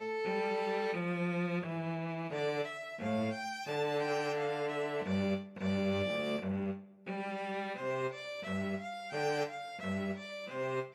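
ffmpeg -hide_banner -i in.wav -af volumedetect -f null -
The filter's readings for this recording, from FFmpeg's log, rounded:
mean_volume: -35.9 dB
max_volume: -22.5 dB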